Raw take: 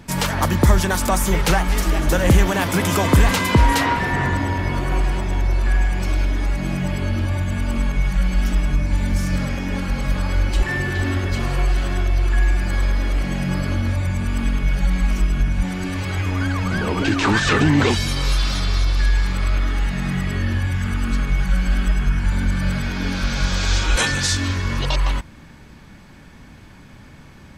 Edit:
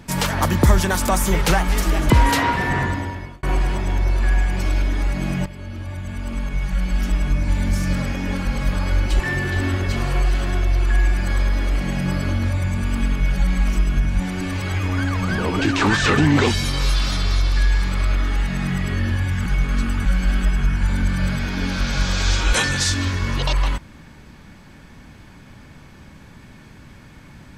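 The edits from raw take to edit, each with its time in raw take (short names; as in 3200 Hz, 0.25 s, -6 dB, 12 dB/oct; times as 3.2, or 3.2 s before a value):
2.1–3.53 cut
4.19–4.86 fade out linear
6.89–8.89 fade in, from -14 dB
20.89–21.48 reverse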